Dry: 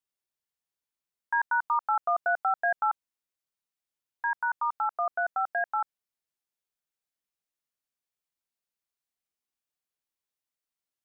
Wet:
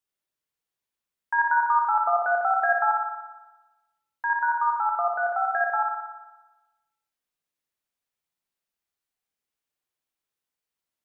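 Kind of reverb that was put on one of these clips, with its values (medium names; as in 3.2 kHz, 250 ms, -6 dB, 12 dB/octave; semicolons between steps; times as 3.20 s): spring tank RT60 1.1 s, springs 57 ms, chirp 25 ms, DRR 1 dB; trim +1.5 dB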